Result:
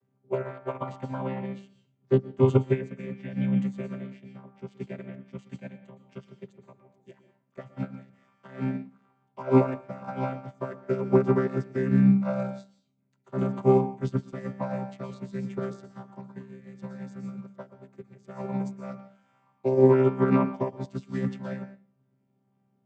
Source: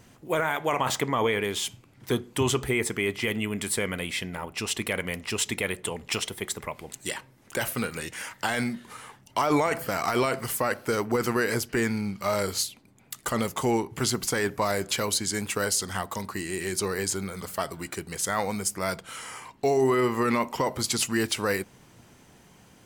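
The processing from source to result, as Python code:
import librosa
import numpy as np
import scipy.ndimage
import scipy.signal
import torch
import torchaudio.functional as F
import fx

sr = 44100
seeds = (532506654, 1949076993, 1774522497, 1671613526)

y = fx.chord_vocoder(x, sr, chord='bare fifth', root=48)
y = fx.high_shelf(y, sr, hz=2200.0, db=-9.5)
y = fx.hum_notches(y, sr, base_hz=50, count=4)
y = fx.rev_plate(y, sr, seeds[0], rt60_s=0.52, hf_ratio=0.8, predelay_ms=105, drr_db=5.5)
y = fx.upward_expand(y, sr, threshold_db=-37.0, expansion=2.5)
y = y * librosa.db_to_amplitude(7.0)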